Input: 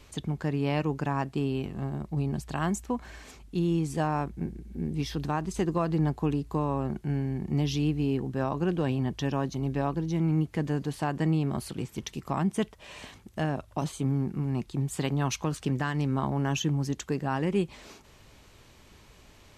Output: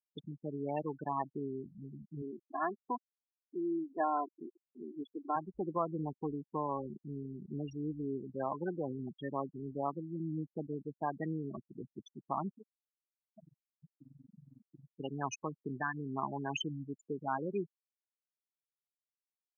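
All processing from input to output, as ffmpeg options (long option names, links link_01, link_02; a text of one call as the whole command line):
ffmpeg -i in.wav -filter_complex "[0:a]asettb=1/sr,asplit=3[link_01][link_02][link_03];[link_01]atrim=end=2.224[link_04];[link_02]atrim=start=2.22:end=5.36,asetpts=PTS-STARTPTS,afade=type=in:duration=0.004:curve=qsin,afade=type=out:start_time=3.136:duration=0.004:curve=qsin,highpass=210,lowpass=5400,aecho=1:1:2.9:0.59,atrim=end_sample=138474[link_05];[link_03]atrim=start=5.356[link_06];[link_04][link_05]acrossfade=duration=0.004:curve1=hsin:curve2=qsin[link_07];[link_07][link_06]acrossfade=duration=0.004:curve1=qsin:curve2=hsin,asettb=1/sr,asplit=3[link_08][link_09][link_10];[link_08]atrim=end=12.574[link_11];[link_09]atrim=start=12.57:end=15,asetpts=PTS-STARTPTS,afade=type=in:duration=0.004:curve=qsin,afade=type=out:start_time=2.426:duration=0.004:curve=qsin,acompressor=threshold=-33dB:ratio=10:attack=3.2:release=140:knee=1:detection=peak,tremolo=f=22:d=0.71[link_12];[link_10]atrim=start=14.996[link_13];[link_11][link_12]acrossfade=duration=0.004:curve1=hsin:curve2=qsin[link_14];[link_14][link_13]acrossfade=duration=0.004:curve1=qsin:curve2=hsin,afftfilt=real='re*gte(hypot(re,im),0.0794)':imag='im*gte(hypot(re,im),0.0794)':win_size=1024:overlap=0.75,highpass=frequency=1300:poles=1,highshelf=frequency=3000:gain=-11,volume=3.5dB" out.wav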